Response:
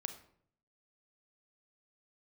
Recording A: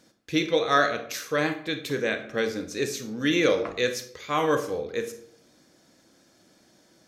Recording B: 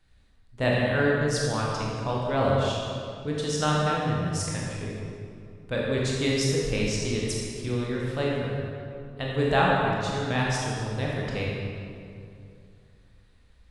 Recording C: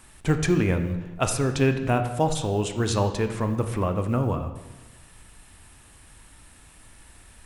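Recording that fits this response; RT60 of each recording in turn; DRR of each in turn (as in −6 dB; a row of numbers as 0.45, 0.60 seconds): A; 0.60, 2.5, 1.2 seconds; 7.5, −4.0, 6.5 decibels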